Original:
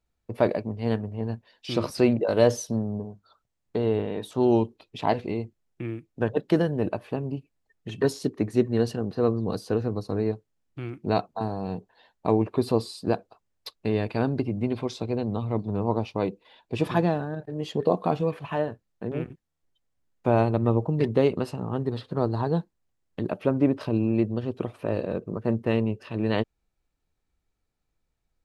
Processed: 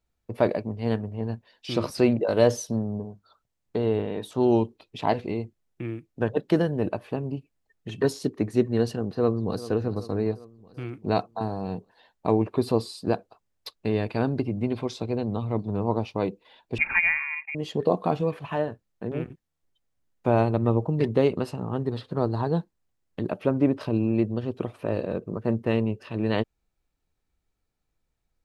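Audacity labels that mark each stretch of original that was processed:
9.020000	9.660000	echo throw 390 ms, feedback 60%, level -16 dB
16.780000	17.550000	frequency inversion carrier 2.6 kHz

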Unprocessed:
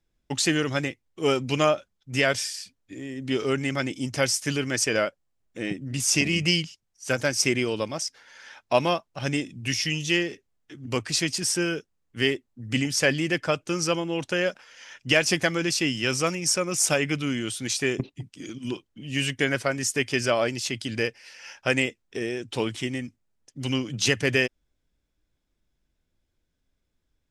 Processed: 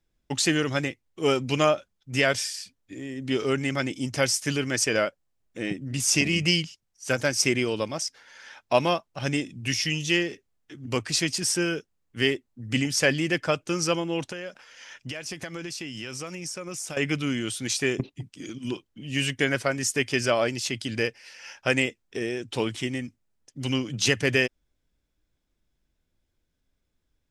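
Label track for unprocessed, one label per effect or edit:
14.310000	16.970000	compression, threshold -32 dBFS

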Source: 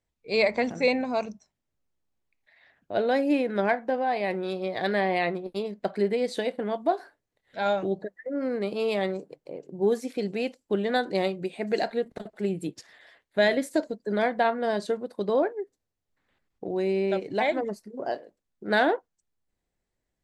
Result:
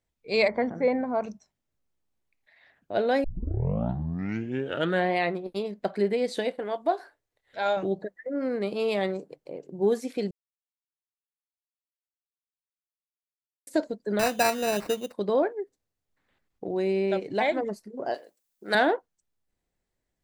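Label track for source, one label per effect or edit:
0.480000	1.240000	Savitzky-Golay filter over 41 samples
3.240000	3.240000	tape start 1.91 s
6.530000	7.770000	peaking EQ 200 Hz -10 dB 0.9 oct
10.310000	13.670000	mute
14.190000	15.130000	sample-rate reducer 3.3 kHz
18.140000	18.750000	RIAA curve recording

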